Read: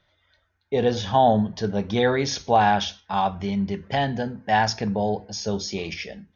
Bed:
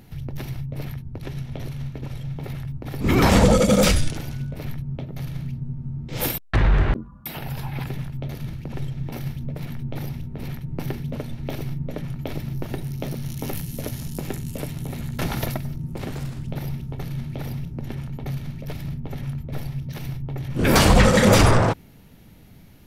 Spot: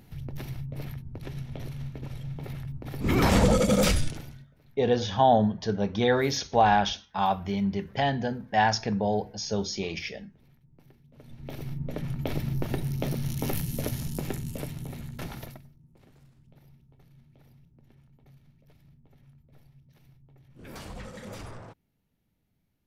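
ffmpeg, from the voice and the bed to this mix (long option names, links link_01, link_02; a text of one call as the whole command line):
ffmpeg -i stem1.wav -i stem2.wav -filter_complex "[0:a]adelay=4050,volume=-2.5dB[link_01];[1:a]volume=22.5dB,afade=type=out:start_time=4.03:duration=0.44:silence=0.0707946,afade=type=in:start_time=11.13:duration=1.15:silence=0.0398107,afade=type=out:start_time=13.78:duration=1.94:silence=0.0473151[link_02];[link_01][link_02]amix=inputs=2:normalize=0" out.wav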